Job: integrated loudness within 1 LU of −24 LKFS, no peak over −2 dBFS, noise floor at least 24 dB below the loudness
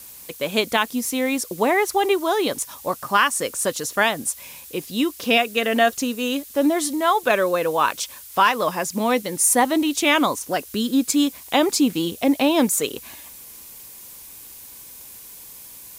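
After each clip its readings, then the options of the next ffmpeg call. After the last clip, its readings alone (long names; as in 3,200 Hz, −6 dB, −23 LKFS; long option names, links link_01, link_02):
background noise floor −42 dBFS; target noise floor −45 dBFS; integrated loudness −21.0 LKFS; sample peak −5.5 dBFS; target loudness −24.0 LKFS
→ -af "afftdn=noise_reduction=6:noise_floor=-42"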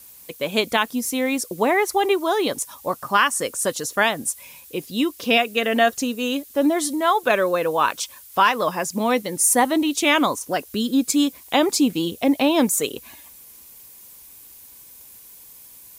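background noise floor −46 dBFS; integrated loudness −21.0 LKFS; sample peak −5.5 dBFS; target loudness −24.0 LKFS
→ -af "volume=-3dB"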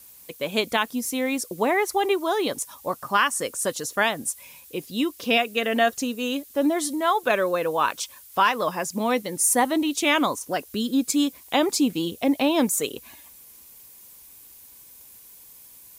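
integrated loudness −24.0 LKFS; sample peak −8.5 dBFS; background noise floor −49 dBFS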